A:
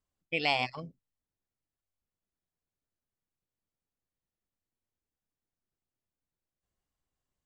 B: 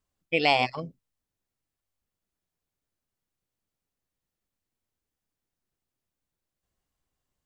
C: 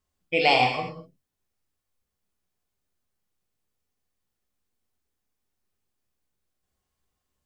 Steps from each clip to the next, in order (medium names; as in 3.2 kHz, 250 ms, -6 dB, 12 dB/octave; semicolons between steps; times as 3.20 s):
dynamic bell 450 Hz, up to +5 dB, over -43 dBFS, Q 0.71; trim +4.5 dB
gated-style reverb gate 270 ms falling, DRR 0.5 dB